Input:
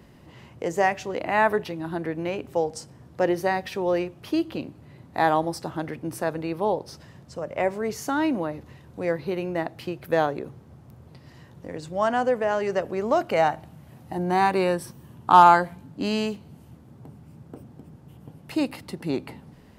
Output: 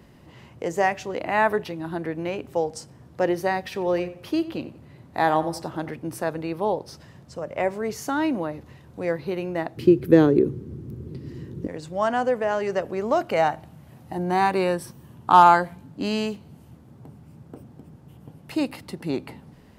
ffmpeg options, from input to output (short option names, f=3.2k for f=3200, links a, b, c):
-filter_complex "[0:a]asettb=1/sr,asplit=3[a][b][c];[a]atrim=end=3.654[d];[b]atrim=start=3.65:end=5.92,asetpts=PTS-STARTPTS,afade=t=in:d=0.004:c=qsin,afade=t=out:st=2.266:d=0.004:c=qsin,asplit=2[e][f];[f]adelay=90,lowpass=f=2.5k:p=1,volume=-14dB,asplit=2[g][h];[h]adelay=90,lowpass=f=2.5k:p=1,volume=0.37,asplit=2[i][j];[j]adelay=90,lowpass=f=2.5k:p=1,volume=0.37,asplit=2[k][l];[l]adelay=90,lowpass=f=2.5k:p=1,volume=0.37[m];[e][g][i][k][m]amix=inputs=5:normalize=0,atrim=end_sample=100107[n];[c]atrim=start=5.916[o];[d][n]acrossfade=d=0.004:c1=hsin:c2=qsin[p];[p][o]acrossfade=d=0.004:c1=qsin:c2=hsin,asettb=1/sr,asplit=3[q][r][s];[q]atrim=end=9.774[t];[r]atrim=start=9.77:end=11.67,asetpts=PTS-STARTPTS,afade=t=in:d=0.004:c=qsin,afade=t=out:st=1.896:d=0.004:c=qsin,lowshelf=f=510:t=q:w=3:g=10.5[u];[s]atrim=start=11.666[v];[t][u]acrossfade=d=0.004:c1=hsin:c2=qsin[w];[w][v]acrossfade=d=0.004:c1=qsin:c2=hsin"